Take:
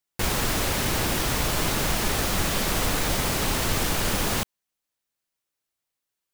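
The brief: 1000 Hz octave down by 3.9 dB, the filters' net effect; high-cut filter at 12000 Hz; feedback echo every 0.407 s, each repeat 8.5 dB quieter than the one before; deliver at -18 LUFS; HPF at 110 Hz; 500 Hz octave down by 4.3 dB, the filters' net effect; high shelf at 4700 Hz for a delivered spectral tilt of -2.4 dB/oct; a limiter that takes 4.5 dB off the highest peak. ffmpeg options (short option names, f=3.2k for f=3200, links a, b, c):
-af "highpass=110,lowpass=12k,equalizer=f=500:t=o:g=-4.5,equalizer=f=1k:t=o:g=-4,highshelf=f=4.7k:g=5,alimiter=limit=-18dB:level=0:latency=1,aecho=1:1:407|814|1221|1628:0.376|0.143|0.0543|0.0206,volume=8dB"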